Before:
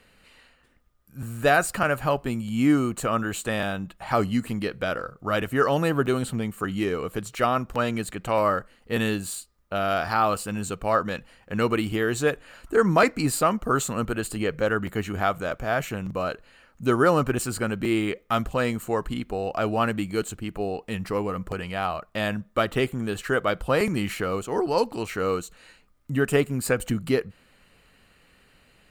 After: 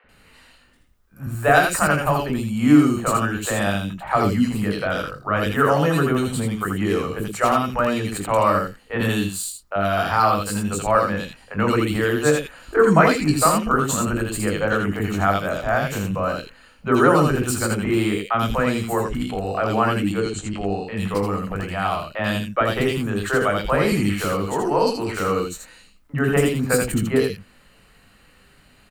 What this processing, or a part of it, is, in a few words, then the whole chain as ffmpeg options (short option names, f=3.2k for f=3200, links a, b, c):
slapback doubling: -filter_complex "[0:a]asettb=1/sr,asplit=3[a][b][c];[a]atrim=end=20.034[d];[b]atrim=start=20.03:end=20.77,asetpts=PTS-STARTPTS,afade=t=in:d=0.004:c=qsin,afade=t=out:st=0.736:d=0.004:c=qsin,lowpass=f=7.6k:w=0.5412,lowpass=f=7.6k:w=1.3066[e];[c]atrim=start=20.766[f];[d][e]acrossfade=d=0.004:c1=hsin:c2=qsin[g];[g][f]acrossfade=d=0.004:c1=qsin:c2=hsin,acrossover=split=470|2500[h][i][j];[h]adelay=40[k];[j]adelay=90[l];[k][i][l]amix=inputs=3:normalize=0,asplit=3[m][n][o];[n]adelay=20,volume=-8dB[p];[o]adelay=80,volume=-5dB[q];[m][p][q]amix=inputs=3:normalize=0,volume=4.5dB"